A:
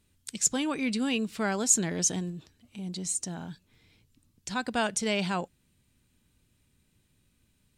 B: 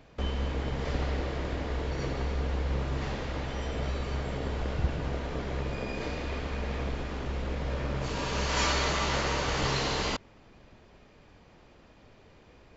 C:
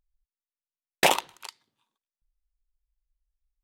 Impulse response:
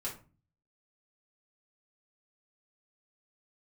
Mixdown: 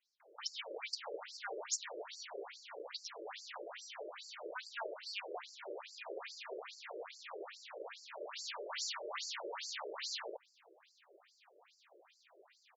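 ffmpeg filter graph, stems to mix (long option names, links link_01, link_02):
-filter_complex "[0:a]highpass=640,highshelf=frequency=6700:width_type=q:width=3:gain=-7.5,volume=-10dB[link_01];[1:a]highpass=62,acompressor=threshold=-33dB:ratio=6,adelay=200,volume=-1dB[link_02];[link_01][link_02]amix=inputs=2:normalize=0,highshelf=frequency=4100:gain=7.5,afftfilt=real='re*between(b*sr/1024,430*pow(6200/430,0.5+0.5*sin(2*PI*2.4*pts/sr))/1.41,430*pow(6200/430,0.5+0.5*sin(2*PI*2.4*pts/sr))*1.41)':imag='im*between(b*sr/1024,430*pow(6200/430,0.5+0.5*sin(2*PI*2.4*pts/sr))/1.41,430*pow(6200/430,0.5+0.5*sin(2*PI*2.4*pts/sr))*1.41)':win_size=1024:overlap=0.75"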